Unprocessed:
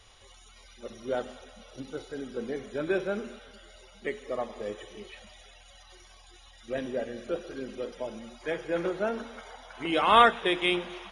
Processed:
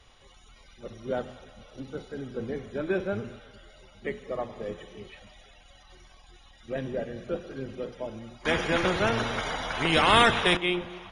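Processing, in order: octave divider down 1 oct, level -2 dB; treble shelf 5.8 kHz -10 dB; 8.45–10.57 s: spectrum-flattening compressor 2:1

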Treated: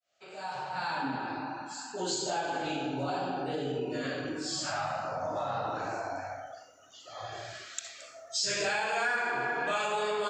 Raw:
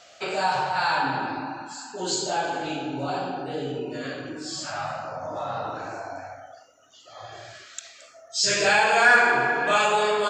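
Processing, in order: fade-in on the opening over 2.56 s; 0.73–1.16 s: peaking EQ 230 Hz +13.5 dB 0.74 oct; compression 4:1, threshold -30 dBFS, peak gain reduction 15 dB; reverberation, pre-delay 58 ms, DRR 12.5 dB

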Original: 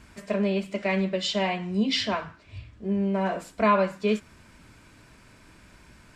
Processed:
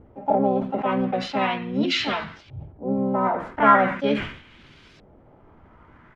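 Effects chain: LFO low-pass saw up 0.4 Hz 500–3800 Hz; harmony voices -7 st -13 dB, +5 st 0 dB; decay stretcher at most 100 dB/s; trim -2 dB

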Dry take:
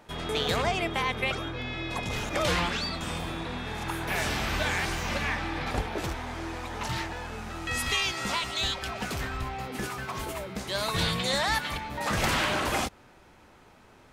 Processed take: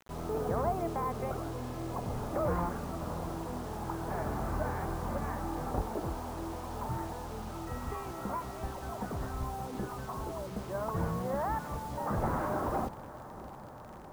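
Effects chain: inverse Chebyshev low-pass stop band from 6.5 kHz, stop band 80 dB; bit crusher 8-bit; echo that smears into a reverb 650 ms, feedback 75%, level -15.5 dB; trim -2.5 dB

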